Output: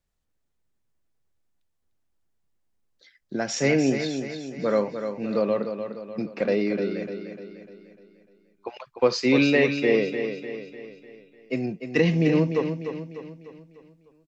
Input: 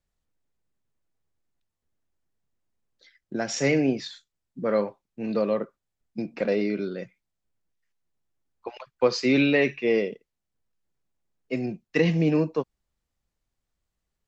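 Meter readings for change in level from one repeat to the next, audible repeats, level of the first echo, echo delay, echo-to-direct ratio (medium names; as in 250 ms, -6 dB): -6.5 dB, 5, -8.0 dB, 299 ms, -7.0 dB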